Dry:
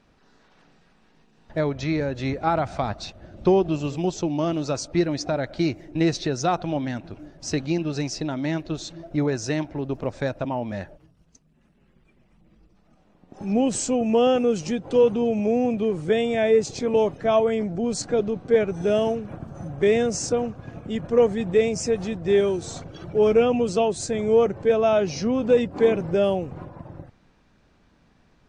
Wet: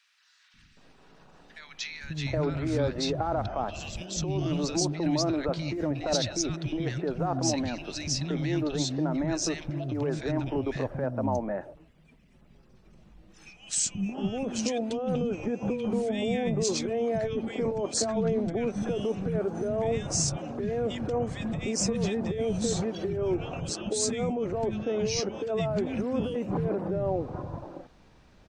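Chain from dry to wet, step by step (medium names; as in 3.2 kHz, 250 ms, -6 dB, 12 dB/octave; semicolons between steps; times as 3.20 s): compressor with a negative ratio -26 dBFS, ratio -1; peak limiter -17.5 dBFS, peak gain reduction 7 dB; three bands offset in time highs, lows, mids 540/770 ms, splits 230/1600 Hz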